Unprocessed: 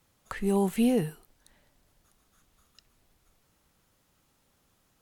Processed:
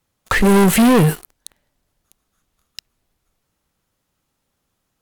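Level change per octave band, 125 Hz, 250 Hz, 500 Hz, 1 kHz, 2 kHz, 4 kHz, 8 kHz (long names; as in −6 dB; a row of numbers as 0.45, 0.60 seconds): +17.0, +13.0, +12.0, +17.0, +22.0, +18.5, +19.0 decibels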